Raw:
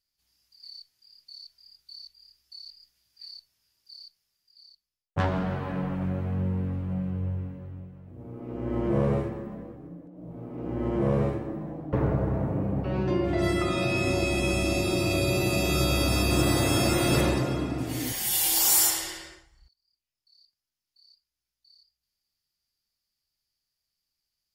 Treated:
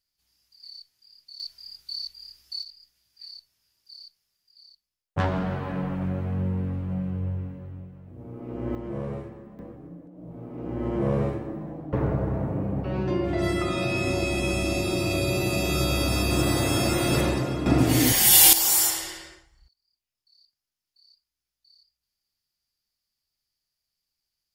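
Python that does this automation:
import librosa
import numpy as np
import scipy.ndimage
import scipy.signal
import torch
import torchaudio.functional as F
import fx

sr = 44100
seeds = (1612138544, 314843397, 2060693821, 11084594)

y = fx.gain(x, sr, db=fx.steps((0.0, 1.0), (1.4, 11.0), (2.63, 1.0), (8.75, -8.0), (9.59, 0.0), (17.66, 11.0), (18.53, 0.0)))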